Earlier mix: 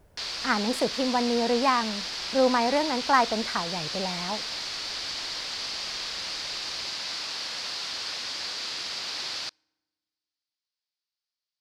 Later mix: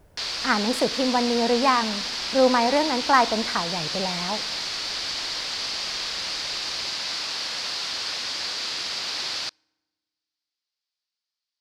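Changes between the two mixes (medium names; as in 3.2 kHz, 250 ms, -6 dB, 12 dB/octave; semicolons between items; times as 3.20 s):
speech: send on; background +4.0 dB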